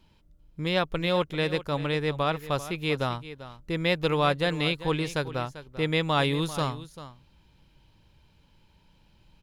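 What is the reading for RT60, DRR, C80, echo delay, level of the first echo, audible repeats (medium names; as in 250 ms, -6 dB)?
no reverb, no reverb, no reverb, 393 ms, -14.5 dB, 1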